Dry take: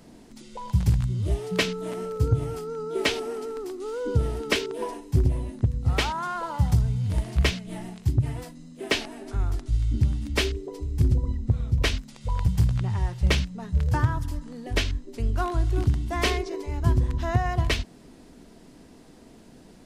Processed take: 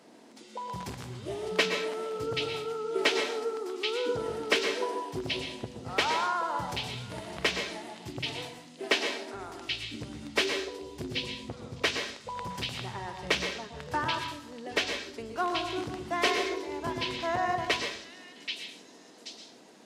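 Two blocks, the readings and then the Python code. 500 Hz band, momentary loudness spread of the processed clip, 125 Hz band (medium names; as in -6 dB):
-1.0 dB, 13 LU, -20.0 dB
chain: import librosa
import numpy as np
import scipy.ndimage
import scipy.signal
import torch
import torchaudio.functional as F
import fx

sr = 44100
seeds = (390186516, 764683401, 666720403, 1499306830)

y = fx.echo_stepped(x, sr, ms=780, hz=3500.0, octaves=0.7, feedback_pct=70, wet_db=-3)
y = fx.rev_plate(y, sr, seeds[0], rt60_s=0.57, hf_ratio=0.75, predelay_ms=105, drr_db=5.0)
y = np.clip(y, -10.0 ** (-12.5 / 20.0), 10.0 ** (-12.5 / 20.0))
y = scipy.signal.sosfilt(scipy.signal.butter(2, 370.0, 'highpass', fs=sr, output='sos'), y)
y = fx.high_shelf(y, sr, hz=8200.0, db=-10.5)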